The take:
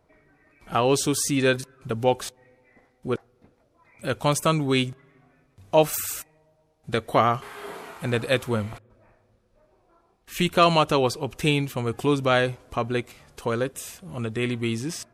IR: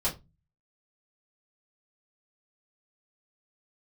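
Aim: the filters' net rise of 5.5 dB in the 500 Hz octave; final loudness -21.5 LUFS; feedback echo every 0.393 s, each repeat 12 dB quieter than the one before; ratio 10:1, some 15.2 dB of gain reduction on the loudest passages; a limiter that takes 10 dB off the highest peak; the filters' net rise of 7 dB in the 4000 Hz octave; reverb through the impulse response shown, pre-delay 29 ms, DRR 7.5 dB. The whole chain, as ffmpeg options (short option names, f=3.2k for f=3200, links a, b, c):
-filter_complex "[0:a]equalizer=f=500:t=o:g=6.5,equalizer=f=4k:t=o:g=9,acompressor=threshold=-24dB:ratio=10,alimiter=limit=-21dB:level=0:latency=1,aecho=1:1:393|786|1179:0.251|0.0628|0.0157,asplit=2[a][b];[1:a]atrim=start_sample=2205,adelay=29[c];[b][c]afir=irnorm=-1:irlink=0,volume=-15dB[d];[a][d]amix=inputs=2:normalize=0,volume=10dB"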